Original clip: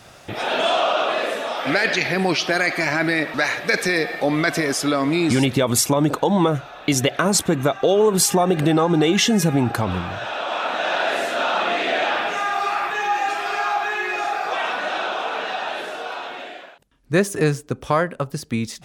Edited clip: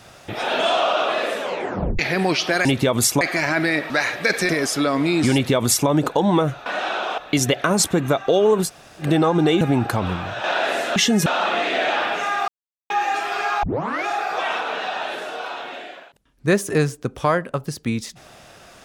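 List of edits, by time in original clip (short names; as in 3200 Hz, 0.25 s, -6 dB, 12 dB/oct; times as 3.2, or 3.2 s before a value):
1.4 tape stop 0.59 s
3.93–4.56 cut
5.39–5.95 copy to 2.65
8.2–8.58 room tone, crossfade 0.10 s
9.16–9.46 move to 11.4
10.29–10.88 cut
12.62–13.04 mute
13.77 tape start 0.43 s
14.75–15.27 move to 6.73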